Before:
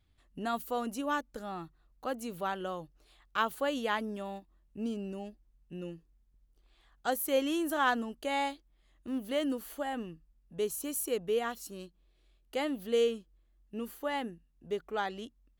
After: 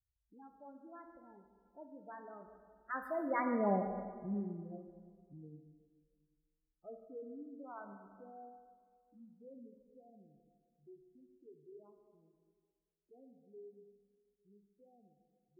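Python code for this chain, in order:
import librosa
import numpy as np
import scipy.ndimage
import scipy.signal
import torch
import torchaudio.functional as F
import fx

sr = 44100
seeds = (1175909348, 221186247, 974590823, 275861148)

y = fx.doppler_pass(x, sr, speed_mps=48, closest_m=6.2, pass_at_s=3.71)
y = fx.env_lowpass(y, sr, base_hz=520.0, full_db=-45.5)
y = fx.spec_gate(y, sr, threshold_db=-10, keep='strong')
y = fx.high_shelf(y, sr, hz=2200.0, db=-9.5)
y = y + 10.0 ** (-15.5 / 20.0) * np.pad(y, (int(143 * sr / 1000.0), 0))[:len(y)]
y = fx.rev_plate(y, sr, seeds[0], rt60_s=1.9, hf_ratio=0.75, predelay_ms=0, drr_db=5.5)
y = F.gain(torch.from_numpy(y), 9.5).numpy()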